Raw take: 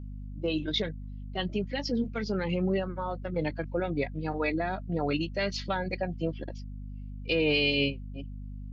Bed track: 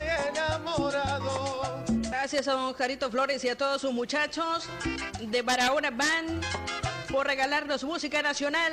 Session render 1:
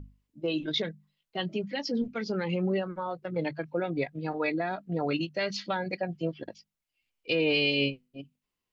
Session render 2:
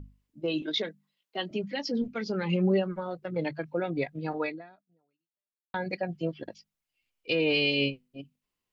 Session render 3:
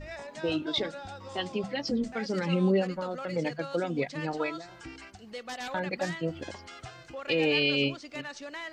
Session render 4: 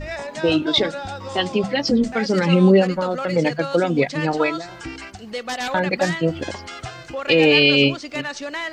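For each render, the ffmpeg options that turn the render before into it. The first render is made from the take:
-af "bandreject=f=50:t=h:w=6,bandreject=f=100:t=h:w=6,bandreject=f=150:t=h:w=6,bandreject=f=200:t=h:w=6,bandreject=f=250:t=h:w=6"
-filter_complex "[0:a]asettb=1/sr,asplit=3[a][b][c];[a]atrim=end=0.624[d];[b]atrim=start=0.62:end=1.51,asetpts=PTS-STARTPTS,afade=t=in:d=0.004:c=qsin,afade=t=out:st=0.886:d=0.004:c=qsin,highpass=f=220:w=0.5412,highpass=f=220:w=1.3066[e];[c]atrim=start=1.506[f];[d][e]acrossfade=d=0.004:c1=hsin:c2=qsin[g];[g][f]acrossfade=d=0.004:c1=qsin:c2=hsin,asettb=1/sr,asplit=3[h][i][j];[h]atrim=end=2.424[k];[i]atrim=start=2.42:end=3.15,asetpts=PTS-STARTPTS,afade=t=in:d=0.004:c=qsin,afade=t=out:st=0.726:d=0.004:c=qsin,aecho=1:1:5:0.65,atrim=end_sample=32193[l];[j]atrim=start=3.146[m];[k][l]acrossfade=d=0.004:c1=hsin:c2=qsin[n];[n][m]acrossfade=d=0.004:c1=qsin:c2=hsin,asplit=2[o][p];[o]atrim=end=5.74,asetpts=PTS-STARTPTS,afade=t=out:st=4.42:d=1.32:c=exp[q];[p]atrim=start=5.74,asetpts=PTS-STARTPTS,afade=t=in:d=0.004:c=hsin[r];[q][r]concat=n=2:v=0:a=1"
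-filter_complex "[1:a]volume=-13dB[a];[0:a][a]amix=inputs=2:normalize=0"
-af "volume=11.5dB"

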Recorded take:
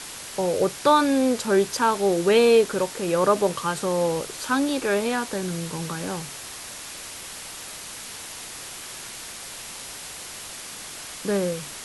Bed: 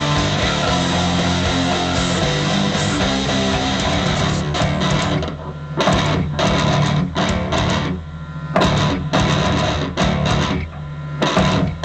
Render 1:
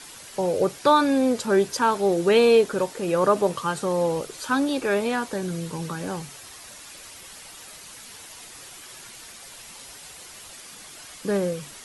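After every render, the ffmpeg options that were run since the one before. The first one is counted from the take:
-af "afftdn=nr=8:nf=-38"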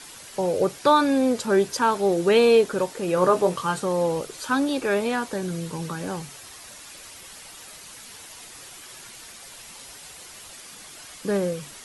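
-filter_complex "[0:a]asettb=1/sr,asplit=3[a][b][c];[a]atrim=end=3.154[d];[b]atrim=start=3.15:end=3.8,asetpts=PTS-STARTPTS,afade=t=in:d=0.004:c=qsin,afade=t=out:st=0.646:d=0.004:c=qsin,asplit=2[e][f];[f]adelay=22,volume=-7.5dB[g];[e][g]amix=inputs=2:normalize=0,atrim=end_sample=28665[h];[c]atrim=start=3.796[i];[d][h]acrossfade=d=0.004:c1=hsin:c2=qsin[j];[j][i]acrossfade=d=0.004:c1=qsin:c2=hsin"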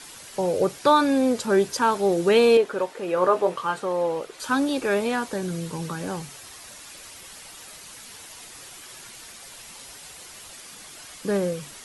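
-filter_complex "[0:a]asettb=1/sr,asplit=3[a][b][c];[a]atrim=end=2.574[d];[b]atrim=start=2.57:end=4.4,asetpts=PTS-STARTPTS,afade=t=in:d=0.004:c=qsin,afade=t=out:st=1.826:d=0.004:c=qsin,bass=f=250:g=-12,treble=f=4k:g=-10[e];[c]atrim=start=4.396[f];[d][e]acrossfade=d=0.004:c1=hsin:c2=qsin[g];[g][f]acrossfade=d=0.004:c1=qsin:c2=hsin"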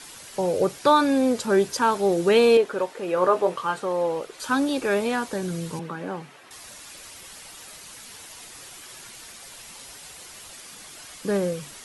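-filter_complex "[0:a]asettb=1/sr,asplit=3[a][b][c];[a]atrim=end=5.794[d];[b]atrim=start=5.79:end=6.51,asetpts=PTS-STARTPTS,afade=t=in:d=0.004:c=qsin,afade=t=out:st=0.716:d=0.004:c=qsin,acrossover=split=160 3000:gain=0.0891 1 0.141[e][f][g];[e][f][g]amix=inputs=3:normalize=0[h];[c]atrim=start=6.506[i];[d][h]acrossfade=d=0.004:c1=hsin:c2=qsin[j];[j][i]acrossfade=d=0.004:c1=qsin:c2=hsin"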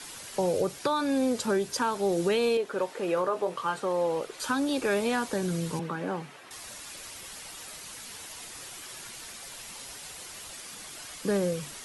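-filter_complex "[0:a]alimiter=limit=-15dB:level=0:latency=1:release=375,acrossover=split=140|3000[a][b][c];[b]acompressor=threshold=-26dB:ratio=2[d];[a][d][c]amix=inputs=3:normalize=0"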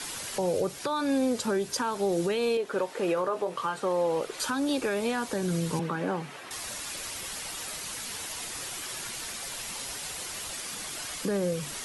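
-filter_complex "[0:a]asplit=2[a][b];[b]acompressor=threshold=-37dB:ratio=6,volume=0dB[c];[a][c]amix=inputs=2:normalize=0,alimiter=limit=-19dB:level=0:latency=1:release=250"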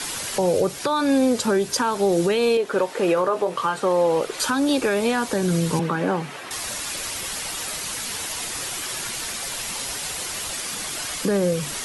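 -af "volume=7.5dB"

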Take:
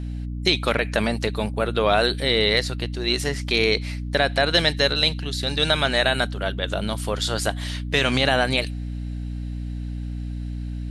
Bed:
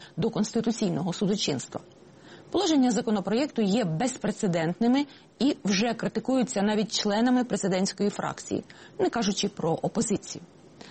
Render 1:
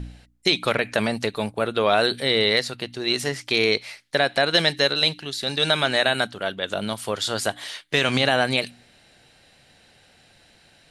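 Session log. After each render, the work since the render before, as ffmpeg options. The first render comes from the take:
-af "bandreject=f=60:t=h:w=4,bandreject=f=120:t=h:w=4,bandreject=f=180:t=h:w=4,bandreject=f=240:t=h:w=4,bandreject=f=300:t=h:w=4"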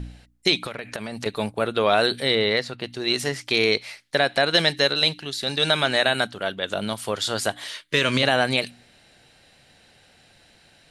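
-filter_complex "[0:a]asettb=1/sr,asplit=3[a][b][c];[a]atrim=end=0.574[d];[b]atrim=start=0.57:end=1.26,asetpts=PTS-STARTPTS,afade=t=in:d=0.004:c=qsin,afade=t=out:st=0.686:d=0.004:c=qsin,acompressor=threshold=-27dB:ratio=12:attack=3.2:release=140:knee=1:detection=peak[e];[c]atrim=start=1.256[f];[d][e]acrossfade=d=0.004:c1=hsin:c2=qsin[g];[g][f]acrossfade=d=0.004:c1=qsin:c2=hsin,asettb=1/sr,asplit=3[h][i][j];[h]atrim=end=2.354[k];[i]atrim=start=2.35:end=2.84,asetpts=PTS-STARTPTS,afade=t=in:d=0.004:c=qsin,afade=t=out:st=0.486:d=0.004:c=qsin,lowpass=f=2.8k:p=1[l];[j]atrim=start=2.836[m];[k][l]acrossfade=d=0.004:c1=hsin:c2=qsin[n];[n][m]acrossfade=d=0.004:c1=qsin:c2=hsin,asettb=1/sr,asplit=3[o][p][q];[o]atrim=end=7.694[r];[p]atrim=start=7.69:end=8.23,asetpts=PTS-STARTPTS,afade=t=in:d=0.004:c=qsin,afade=t=out:st=0.536:d=0.004:c=qsin,asuperstop=centerf=770:order=12:qfactor=3.7[s];[q]atrim=start=8.226[t];[r][s]acrossfade=d=0.004:c1=hsin:c2=qsin[u];[u][t]acrossfade=d=0.004:c1=qsin:c2=hsin"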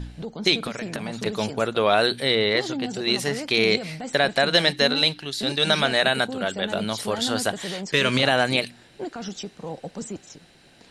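-filter_complex "[1:a]volume=-7.5dB[a];[0:a][a]amix=inputs=2:normalize=0"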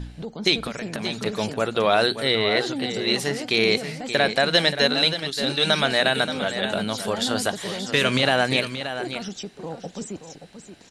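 -af "aecho=1:1:578:0.316"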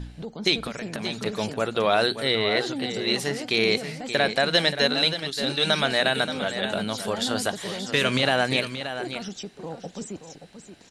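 -af "volume=-2dB"

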